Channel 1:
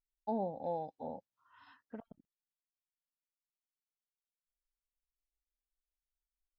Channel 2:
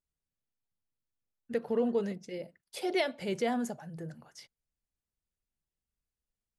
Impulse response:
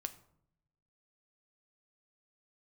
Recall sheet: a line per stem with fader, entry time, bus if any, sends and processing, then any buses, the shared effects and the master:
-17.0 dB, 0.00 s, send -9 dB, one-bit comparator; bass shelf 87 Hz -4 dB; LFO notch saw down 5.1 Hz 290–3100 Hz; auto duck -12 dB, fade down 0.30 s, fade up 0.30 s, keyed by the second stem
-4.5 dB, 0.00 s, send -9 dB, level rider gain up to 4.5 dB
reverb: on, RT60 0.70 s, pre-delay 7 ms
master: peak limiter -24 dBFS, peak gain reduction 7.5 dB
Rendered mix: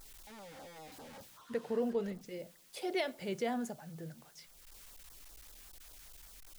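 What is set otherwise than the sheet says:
stem 1 -17.0 dB -> -5.0 dB; stem 2 -4.5 dB -> -11.0 dB

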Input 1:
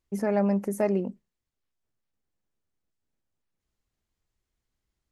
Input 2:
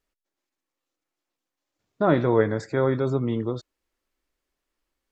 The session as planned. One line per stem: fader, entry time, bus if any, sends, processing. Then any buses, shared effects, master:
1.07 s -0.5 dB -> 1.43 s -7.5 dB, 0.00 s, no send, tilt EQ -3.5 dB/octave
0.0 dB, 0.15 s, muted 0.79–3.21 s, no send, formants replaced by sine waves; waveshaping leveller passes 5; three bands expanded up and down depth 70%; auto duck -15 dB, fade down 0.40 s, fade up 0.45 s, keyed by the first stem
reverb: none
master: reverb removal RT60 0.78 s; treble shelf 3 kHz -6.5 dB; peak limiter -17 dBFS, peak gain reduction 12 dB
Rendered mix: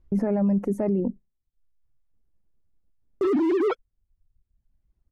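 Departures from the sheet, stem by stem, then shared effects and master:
stem 1 -0.5 dB -> +7.5 dB; stem 2 0.0 dB -> +8.5 dB

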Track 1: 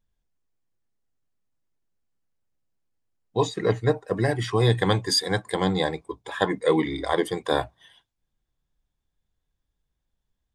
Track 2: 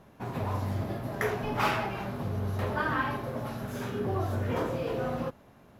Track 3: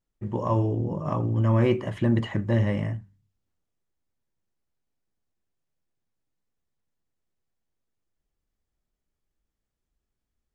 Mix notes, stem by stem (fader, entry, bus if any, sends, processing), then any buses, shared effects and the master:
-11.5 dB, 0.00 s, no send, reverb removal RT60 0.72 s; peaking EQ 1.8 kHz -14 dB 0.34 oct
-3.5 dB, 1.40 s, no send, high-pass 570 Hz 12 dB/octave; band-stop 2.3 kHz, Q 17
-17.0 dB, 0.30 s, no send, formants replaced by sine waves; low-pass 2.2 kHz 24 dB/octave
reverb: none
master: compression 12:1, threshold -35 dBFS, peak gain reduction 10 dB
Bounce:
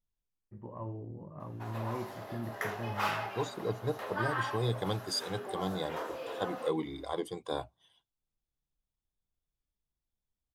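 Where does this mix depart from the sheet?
stem 1: missing reverb removal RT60 0.72 s; stem 3: missing formants replaced by sine waves; master: missing compression 12:1, threshold -35 dBFS, peak gain reduction 10 dB

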